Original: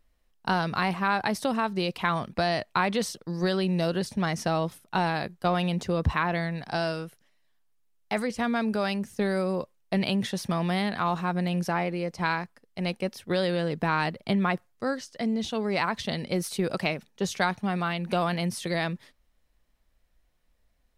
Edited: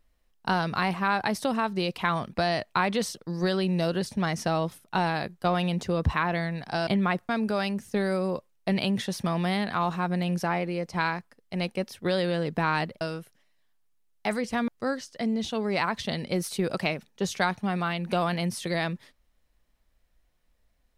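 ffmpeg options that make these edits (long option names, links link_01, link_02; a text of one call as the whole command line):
ffmpeg -i in.wav -filter_complex "[0:a]asplit=5[link_01][link_02][link_03][link_04][link_05];[link_01]atrim=end=6.872[link_06];[link_02]atrim=start=14.258:end=14.682[link_07];[link_03]atrim=start=8.538:end=14.262[link_08];[link_04]atrim=start=6.868:end=8.542[link_09];[link_05]atrim=start=14.678[link_10];[link_06][link_07]acrossfade=duration=0.004:curve1=hsin:curve2=hsin[link_11];[link_11][link_08]acrossfade=duration=0.004:curve1=hsin:curve2=hsin[link_12];[link_12][link_09]acrossfade=duration=0.004:curve1=hsin:curve2=hsin[link_13];[link_13][link_10]acrossfade=duration=0.004:curve1=hsin:curve2=hsin" out.wav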